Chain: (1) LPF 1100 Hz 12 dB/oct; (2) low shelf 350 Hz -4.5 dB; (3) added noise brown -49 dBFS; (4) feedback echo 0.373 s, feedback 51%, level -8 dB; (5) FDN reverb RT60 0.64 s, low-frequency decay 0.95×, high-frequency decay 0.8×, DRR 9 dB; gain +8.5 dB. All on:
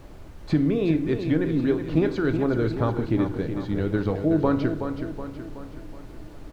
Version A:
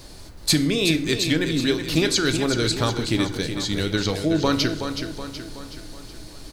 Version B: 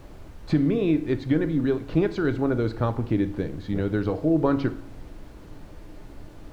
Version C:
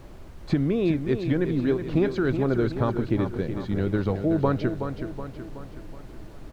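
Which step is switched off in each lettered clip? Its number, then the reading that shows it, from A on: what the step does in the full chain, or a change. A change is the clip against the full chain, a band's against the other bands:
1, 4 kHz band +21.5 dB; 4, echo-to-direct -4.5 dB to -9.0 dB; 5, echo-to-direct -4.5 dB to -6.5 dB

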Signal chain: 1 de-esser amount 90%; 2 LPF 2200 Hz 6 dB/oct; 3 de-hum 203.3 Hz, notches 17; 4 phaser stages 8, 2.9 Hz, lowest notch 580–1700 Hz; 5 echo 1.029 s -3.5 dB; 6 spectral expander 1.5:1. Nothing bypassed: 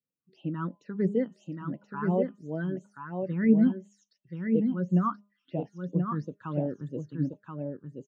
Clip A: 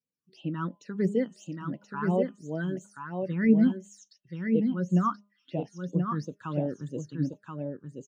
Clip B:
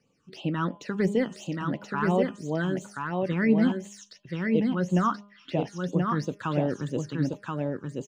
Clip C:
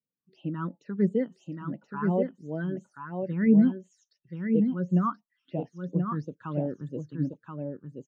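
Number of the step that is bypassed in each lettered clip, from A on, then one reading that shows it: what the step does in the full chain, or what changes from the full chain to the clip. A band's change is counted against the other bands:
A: 2, 2 kHz band +3.0 dB; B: 6, 2 kHz band +7.0 dB; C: 3, momentary loudness spread change +1 LU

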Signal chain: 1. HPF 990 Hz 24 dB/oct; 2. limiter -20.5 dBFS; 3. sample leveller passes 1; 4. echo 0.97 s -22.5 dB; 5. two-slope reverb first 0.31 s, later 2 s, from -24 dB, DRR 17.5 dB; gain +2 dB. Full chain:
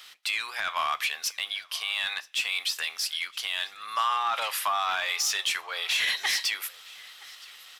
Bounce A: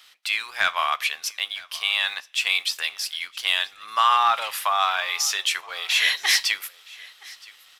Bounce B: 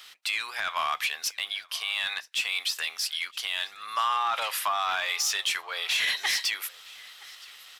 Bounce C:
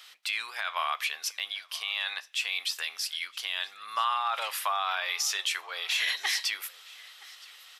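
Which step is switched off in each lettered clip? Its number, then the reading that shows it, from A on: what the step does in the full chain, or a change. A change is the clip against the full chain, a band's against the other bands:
2, mean gain reduction 2.0 dB; 5, echo-to-direct -16.5 dB to -22.5 dB; 3, crest factor change +2.0 dB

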